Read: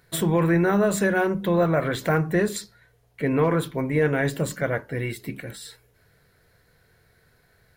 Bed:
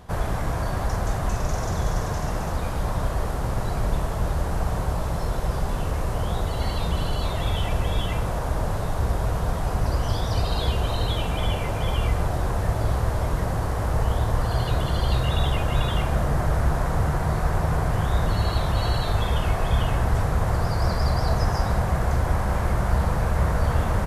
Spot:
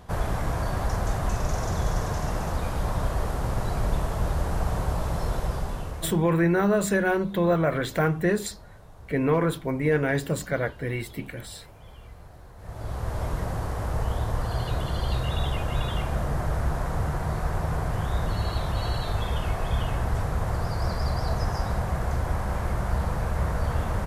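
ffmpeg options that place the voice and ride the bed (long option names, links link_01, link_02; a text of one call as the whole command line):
ffmpeg -i stem1.wav -i stem2.wav -filter_complex "[0:a]adelay=5900,volume=-1.5dB[link_01];[1:a]volume=17dB,afade=type=out:start_time=5.34:duration=0.95:silence=0.0841395,afade=type=in:start_time=12.57:duration=0.66:silence=0.11885[link_02];[link_01][link_02]amix=inputs=2:normalize=0" out.wav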